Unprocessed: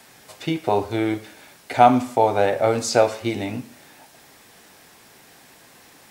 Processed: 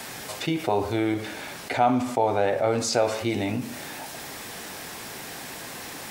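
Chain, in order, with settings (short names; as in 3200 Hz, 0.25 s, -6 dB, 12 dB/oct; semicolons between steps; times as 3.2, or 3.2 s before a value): 1.14–2.93 high shelf 6200 Hz -5.5 dB; fast leveller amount 50%; gain -8.5 dB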